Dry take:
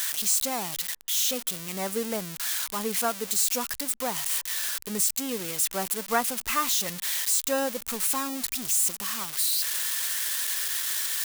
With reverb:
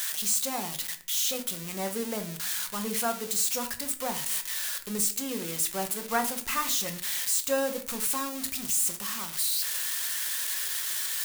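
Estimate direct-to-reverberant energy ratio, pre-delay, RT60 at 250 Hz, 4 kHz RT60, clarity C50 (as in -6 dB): 6.0 dB, 5 ms, 0.75 s, 0.30 s, 13.0 dB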